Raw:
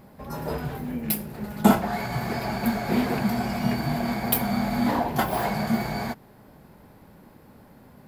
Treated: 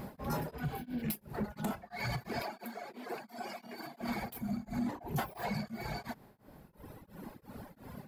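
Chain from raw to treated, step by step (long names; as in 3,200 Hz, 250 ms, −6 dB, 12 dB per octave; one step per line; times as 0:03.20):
0:04.40–0:05.18: gain on a spectral selection 410–5,700 Hz −6 dB
reverb reduction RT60 1.8 s
0:00.70–0:00.99: healed spectral selection 1,500–5,900 Hz before
downward compressor 20 to 1, threshold −36 dBFS, peak gain reduction 25.5 dB
0:02.42–0:04.01: four-pole ladder high-pass 230 Hz, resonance 20%
soft clipping −34 dBFS, distortion −16 dB
tremolo along a rectified sine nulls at 2.9 Hz
level +7.5 dB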